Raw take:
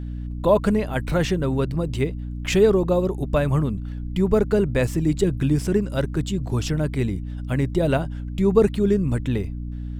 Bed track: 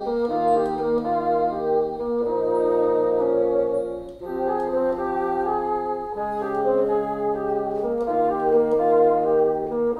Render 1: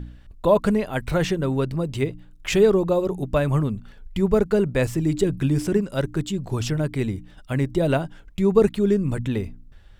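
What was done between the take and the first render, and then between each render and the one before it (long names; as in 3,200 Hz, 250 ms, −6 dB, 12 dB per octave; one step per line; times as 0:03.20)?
hum removal 60 Hz, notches 5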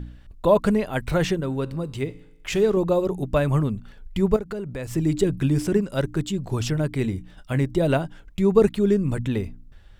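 0:01.40–0:02.77: tuned comb filter 54 Hz, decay 0.94 s, mix 40%
0:04.36–0:04.91: downward compressor 4 to 1, threshold −29 dBFS
0:07.02–0:07.61: double-tracking delay 22 ms −12 dB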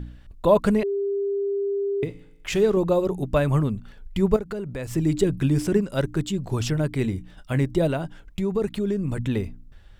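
0:00.83–0:02.03: beep over 399 Hz −22 dBFS
0:07.87–0:09.19: downward compressor 2.5 to 1, threshold −23 dBFS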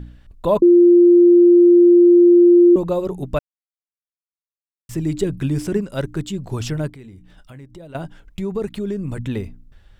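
0:00.62–0:02.76: beep over 349 Hz −6.5 dBFS
0:03.39–0:04.89: silence
0:06.89–0:07.95: downward compressor 3 to 1, threshold −42 dBFS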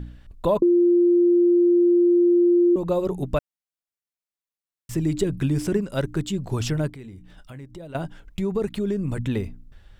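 downward compressor 3 to 1, threshold −18 dBFS, peak gain reduction 7 dB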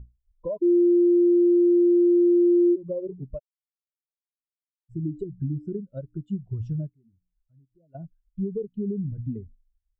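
downward compressor 10 to 1, threshold −23 dBFS, peak gain reduction 8.5 dB
every bin expanded away from the loudest bin 2.5 to 1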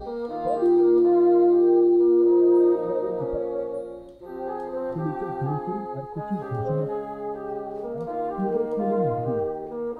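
mix in bed track −7.5 dB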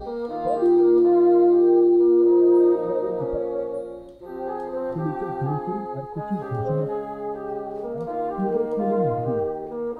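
level +1.5 dB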